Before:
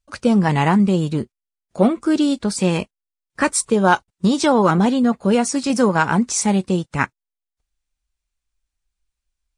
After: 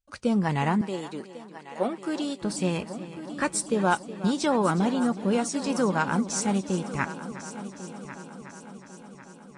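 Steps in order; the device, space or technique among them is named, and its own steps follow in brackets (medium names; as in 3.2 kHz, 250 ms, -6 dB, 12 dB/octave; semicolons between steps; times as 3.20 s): multi-head tape echo (multi-head delay 366 ms, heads first and third, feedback 62%, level -15 dB; wow and flutter 20 cents); 0.81–2.42 s: high-pass 360 Hz 12 dB/octave; trim -8.5 dB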